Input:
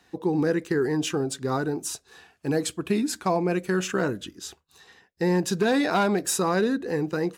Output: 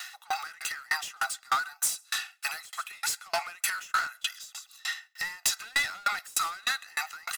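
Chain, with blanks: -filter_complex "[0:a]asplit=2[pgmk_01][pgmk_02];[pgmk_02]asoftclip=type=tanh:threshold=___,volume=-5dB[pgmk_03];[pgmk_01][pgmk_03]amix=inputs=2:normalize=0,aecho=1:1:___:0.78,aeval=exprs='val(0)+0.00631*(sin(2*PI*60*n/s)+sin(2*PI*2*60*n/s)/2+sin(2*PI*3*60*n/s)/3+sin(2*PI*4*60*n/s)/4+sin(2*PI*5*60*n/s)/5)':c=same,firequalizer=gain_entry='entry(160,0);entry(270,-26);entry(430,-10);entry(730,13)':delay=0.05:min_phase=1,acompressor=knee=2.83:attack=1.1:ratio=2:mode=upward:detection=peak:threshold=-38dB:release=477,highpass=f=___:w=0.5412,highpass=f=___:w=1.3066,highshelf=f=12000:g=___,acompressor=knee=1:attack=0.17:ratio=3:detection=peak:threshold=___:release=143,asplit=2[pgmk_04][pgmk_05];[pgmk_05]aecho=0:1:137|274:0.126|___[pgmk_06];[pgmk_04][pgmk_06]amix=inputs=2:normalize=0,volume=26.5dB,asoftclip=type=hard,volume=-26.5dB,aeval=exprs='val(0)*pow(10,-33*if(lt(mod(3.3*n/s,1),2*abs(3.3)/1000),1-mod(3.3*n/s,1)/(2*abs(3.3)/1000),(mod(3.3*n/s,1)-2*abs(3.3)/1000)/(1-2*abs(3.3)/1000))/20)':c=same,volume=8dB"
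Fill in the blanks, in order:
-27dB, 1.5, 1200, 1200, 8.5, -25dB, 0.034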